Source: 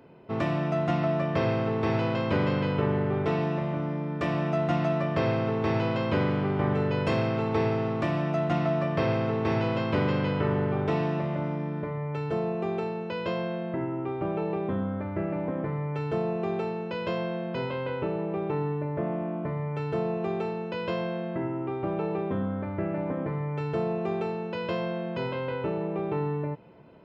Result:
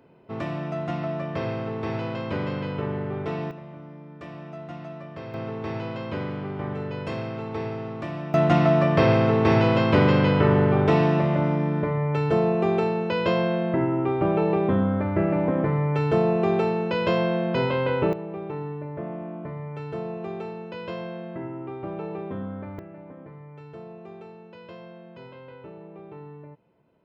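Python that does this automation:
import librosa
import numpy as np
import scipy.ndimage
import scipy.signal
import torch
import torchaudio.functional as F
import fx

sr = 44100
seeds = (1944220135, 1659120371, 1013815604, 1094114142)

y = fx.gain(x, sr, db=fx.steps((0.0, -3.0), (3.51, -12.0), (5.34, -5.0), (8.34, 7.5), (18.13, -3.5), (22.79, -13.0)))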